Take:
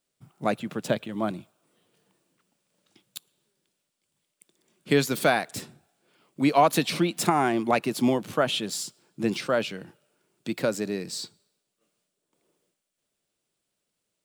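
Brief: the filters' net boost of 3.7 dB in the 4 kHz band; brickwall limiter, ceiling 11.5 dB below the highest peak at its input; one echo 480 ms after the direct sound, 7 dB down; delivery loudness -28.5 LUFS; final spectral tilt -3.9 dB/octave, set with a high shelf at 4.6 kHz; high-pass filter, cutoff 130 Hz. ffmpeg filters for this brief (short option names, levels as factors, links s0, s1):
-af "highpass=130,equalizer=f=4000:t=o:g=8.5,highshelf=f=4600:g=-8,alimiter=limit=0.133:level=0:latency=1,aecho=1:1:480:0.447,volume=1.19"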